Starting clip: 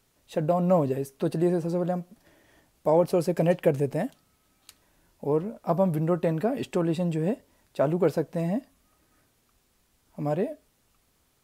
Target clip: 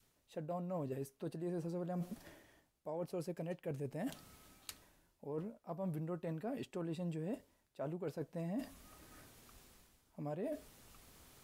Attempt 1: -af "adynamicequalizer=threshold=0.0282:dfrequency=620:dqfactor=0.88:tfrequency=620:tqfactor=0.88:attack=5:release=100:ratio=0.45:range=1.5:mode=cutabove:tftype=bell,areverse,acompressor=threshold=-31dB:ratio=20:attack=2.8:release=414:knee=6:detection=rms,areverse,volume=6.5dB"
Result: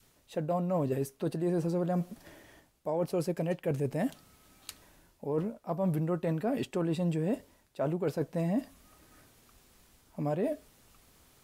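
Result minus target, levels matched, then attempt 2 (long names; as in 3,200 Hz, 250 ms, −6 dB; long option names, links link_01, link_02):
downward compressor: peak gain reduction −11 dB
-af "adynamicequalizer=threshold=0.0282:dfrequency=620:dqfactor=0.88:tfrequency=620:tqfactor=0.88:attack=5:release=100:ratio=0.45:range=1.5:mode=cutabove:tftype=bell,areverse,acompressor=threshold=-42.5dB:ratio=20:attack=2.8:release=414:knee=6:detection=rms,areverse,volume=6.5dB"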